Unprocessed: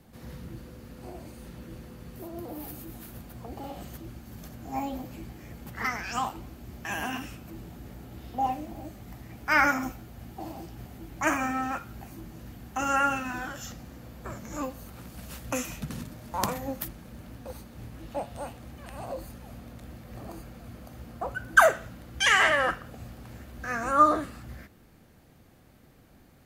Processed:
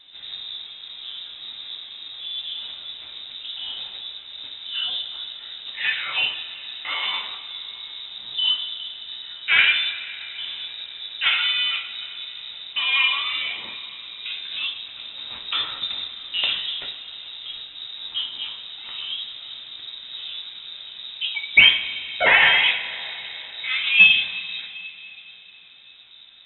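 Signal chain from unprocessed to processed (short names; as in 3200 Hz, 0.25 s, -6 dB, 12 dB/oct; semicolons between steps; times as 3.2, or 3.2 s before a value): sine folder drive 4 dB, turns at -4 dBFS; two-slope reverb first 0.4 s, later 3.9 s, from -19 dB, DRR 1 dB; inverted band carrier 3800 Hz; gain -3.5 dB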